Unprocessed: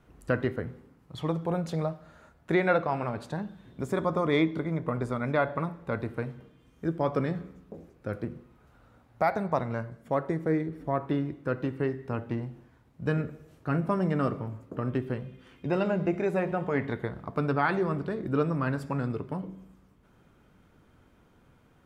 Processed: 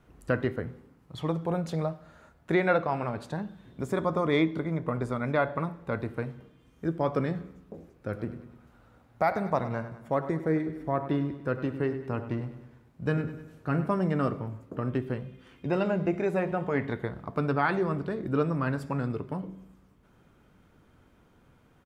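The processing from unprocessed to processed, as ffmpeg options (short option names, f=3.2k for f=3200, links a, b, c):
-filter_complex "[0:a]asplit=3[a][b][c];[a]afade=t=out:st=8.16:d=0.02[d];[b]aecho=1:1:100|200|300|400|500:0.224|0.116|0.0605|0.0315|0.0164,afade=t=in:st=8.16:d=0.02,afade=t=out:st=13.88:d=0.02[e];[c]afade=t=in:st=13.88:d=0.02[f];[d][e][f]amix=inputs=3:normalize=0"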